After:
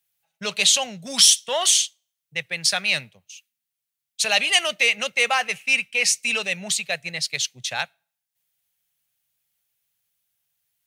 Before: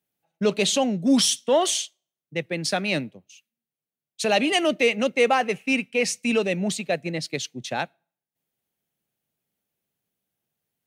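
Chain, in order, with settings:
guitar amp tone stack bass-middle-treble 10-0-10
level +9 dB

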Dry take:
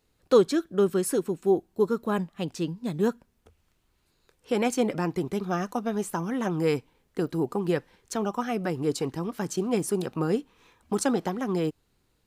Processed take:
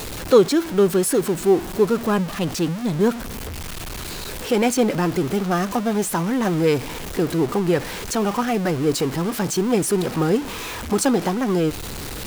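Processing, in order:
converter with a step at zero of −30 dBFS
level +5 dB

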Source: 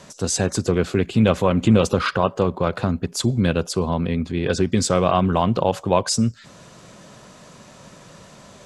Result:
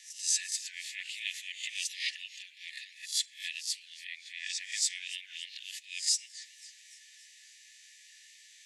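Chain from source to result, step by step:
peak hold with a rise ahead of every peak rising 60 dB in 0.33 s
linear-phase brick-wall high-pass 1,700 Hz
feedback echo with a swinging delay time 278 ms, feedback 58%, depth 200 cents, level −19.5 dB
level −6 dB

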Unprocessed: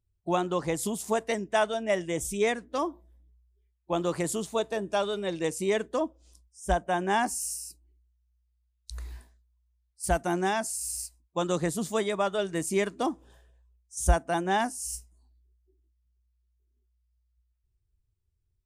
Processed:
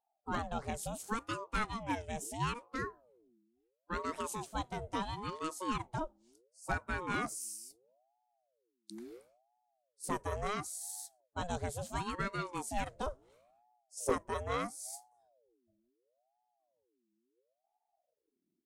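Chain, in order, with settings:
wavefolder on the positive side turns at −16.5 dBFS
ring modulator whose carrier an LFO sweeps 530 Hz, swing 50%, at 0.73 Hz
level −6.5 dB

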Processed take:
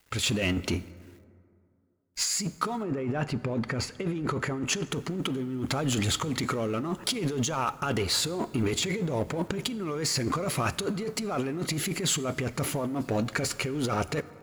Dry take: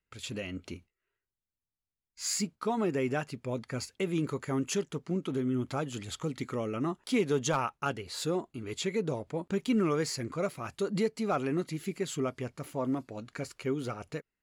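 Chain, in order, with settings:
mu-law and A-law mismatch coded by mu
0:02.82–0:04.91: low-pass filter 1,300 Hz → 3,500 Hz 6 dB per octave
brickwall limiter −24 dBFS, peak gain reduction 7.5 dB
compressor whose output falls as the input rises −37 dBFS, ratio −1
convolution reverb RT60 2.4 s, pre-delay 23 ms, DRR 17 dB
level +8 dB

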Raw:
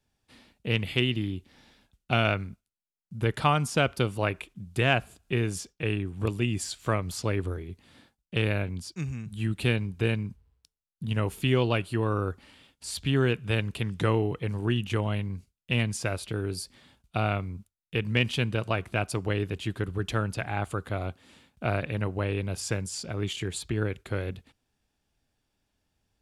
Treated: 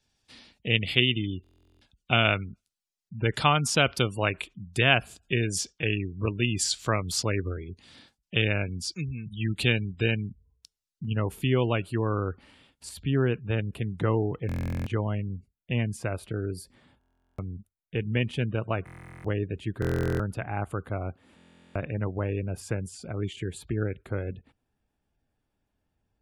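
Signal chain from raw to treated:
gate on every frequency bin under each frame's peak −30 dB strong
parametric band 5,200 Hz +9.5 dB 2.1 octaves, from 0:11.05 −3.5 dB, from 0:12.89 −11 dB
buffer that repeats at 0:01.42/0:14.47/0:16.99/0:18.85/0:19.80/0:21.36, samples 1,024, times 16

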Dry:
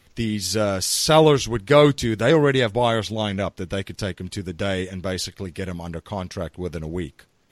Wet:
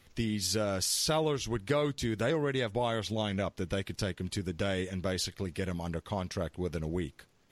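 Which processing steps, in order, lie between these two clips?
downward compressor 4 to 1, threshold −24 dBFS, peak gain reduction 12.5 dB
level −4 dB

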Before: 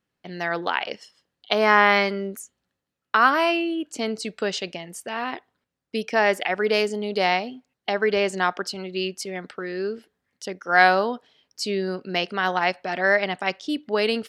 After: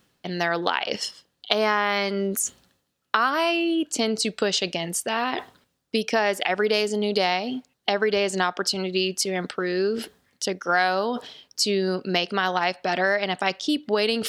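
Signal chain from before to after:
reversed playback
upward compression, threshold −28 dBFS
reversed playback
drawn EQ curve 1,300 Hz 0 dB, 2,100 Hz −2 dB, 3,400 Hz +4 dB
downward compressor 4 to 1, threshold −25 dBFS, peak gain reduction 12.5 dB
level +5.5 dB

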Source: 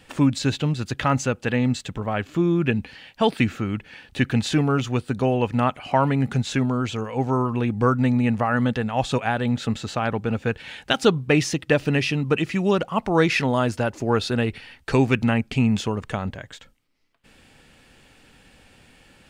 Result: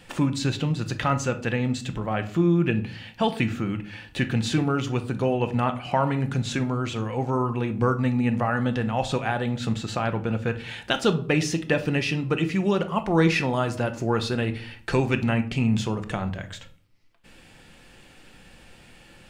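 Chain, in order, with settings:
in parallel at +0.5 dB: downward compressor, threshold −32 dBFS, peak gain reduction 19 dB
on the sum: convolution reverb RT60 0.50 s, pre-delay 6 ms, DRR 7.5 dB
level −5 dB

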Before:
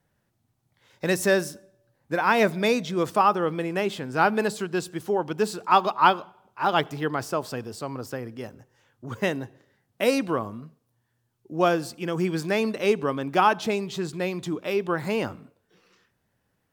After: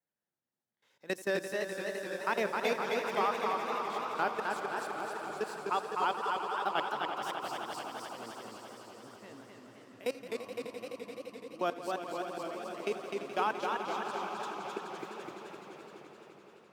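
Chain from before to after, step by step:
output level in coarse steps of 21 dB
high-pass filter 240 Hz 12 dB per octave
echo that builds up and dies away 85 ms, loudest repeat 5, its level −12 dB
feedback echo with a swinging delay time 259 ms, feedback 64%, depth 148 cents, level −4 dB
level −8.5 dB

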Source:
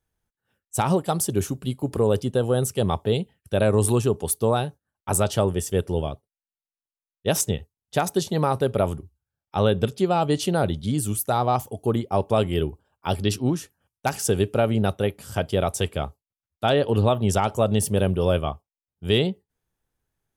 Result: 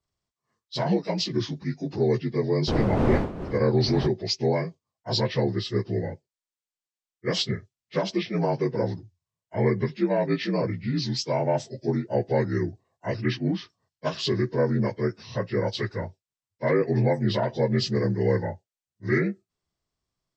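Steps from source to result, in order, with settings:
partials spread apart or drawn together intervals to 80%
0:02.67–0:04.06: wind on the microphone 410 Hz −18 dBFS
level −1.5 dB

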